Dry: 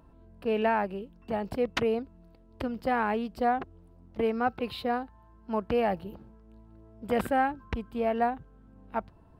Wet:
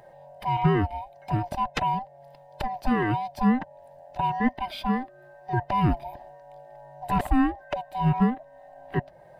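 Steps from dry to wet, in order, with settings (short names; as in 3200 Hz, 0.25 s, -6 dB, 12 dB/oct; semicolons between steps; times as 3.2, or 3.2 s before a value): band-swap scrambler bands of 500 Hz; low shelf 310 Hz +9 dB; mismatched tape noise reduction encoder only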